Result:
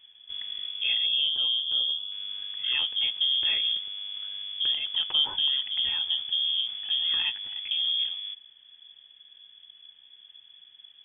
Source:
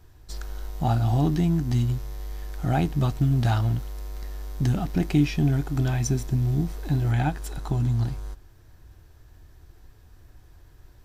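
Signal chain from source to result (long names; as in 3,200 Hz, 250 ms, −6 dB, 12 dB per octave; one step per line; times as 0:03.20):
0:01.06–0:02.12: flat-topped bell 1,200 Hz −14.5 dB 1.3 octaves
voice inversion scrambler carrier 3,400 Hz
level −5 dB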